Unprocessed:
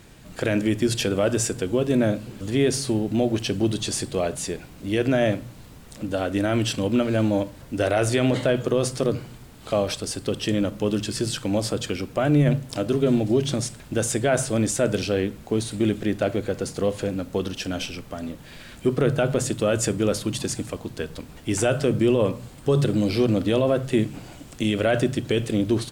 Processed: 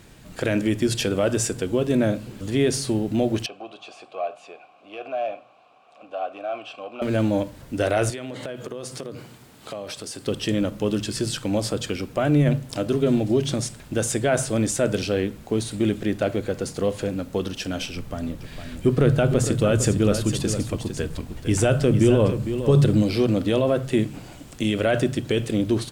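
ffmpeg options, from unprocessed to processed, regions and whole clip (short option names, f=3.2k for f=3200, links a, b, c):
-filter_complex "[0:a]asettb=1/sr,asplit=3[a][b][c];[a]atrim=end=3.464[d];[b]atrim=start=3.46:end=7.02,asetpts=PTS-STARTPTS,afade=t=in:d=0.004:c=qsin,afade=t=out:st=3.556:d=0.004:c=qsin,asplit=2[e][f];[f]highpass=f=720:p=1,volume=15dB,asoftclip=type=tanh:threshold=-10dB[g];[e][g]amix=inputs=2:normalize=0,lowpass=f=3.9k:p=1,volume=-6dB,asplit=3[h][i][j];[h]bandpass=f=730:t=q:w=8,volume=0dB[k];[i]bandpass=f=1.09k:t=q:w=8,volume=-6dB[l];[j]bandpass=f=2.44k:t=q:w=8,volume=-9dB[m];[k][l][m]amix=inputs=3:normalize=0[n];[c]atrim=start=7.016[o];[d][n]acrossfade=d=0.004:c1=hsin:c2=qsin[p];[p][o]acrossfade=d=0.004:c1=qsin:c2=hsin,asettb=1/sr,asplit=3[q][r][s];[q]atrim=end=8.104[t];[r]atrim=start=8.1:end=10.27,asetpts=PTS-STARTPTS,afade=t=in:d=0.004:c=qsin,afade=t=out:st=2.166:d=0.004:c=qsin,lowshelf=f=180:g=-7,acompressor=threshold=-30dB:ratio=5:attack=3.2:release=140:knee=1:detection=peak,highpass=84[u];[s]atrim=start=10.266[v];[t][u]acrossfade=d=0.004:c1=hsin:c2=qsin[w];[w][v]acrossfade=d=0.004:c1=qsin:c2=hsin,asettb=1/sr,asplit=3[x][y][z];[x]atrim=end=17.954[aa];[y]atrim=start=17.95:end=23.03,asetpts=PTS-STARTPTS,afade=t=in:d=0.004:c=qsin,afade=t=out:st=5.076:d=0.004:c=qsin,lowshelf=f=150:g=10,aecho=1:1:456:0.335,atrim=end_sample=224028[ab];[z]atrim=start=23.026[ac];[aa][ab]acrossfade=d=0.004:c1=hsin:c2=qsin[ad];[ad][ac]acrossfade=d=0.004:c1=qsin:c2=hsin"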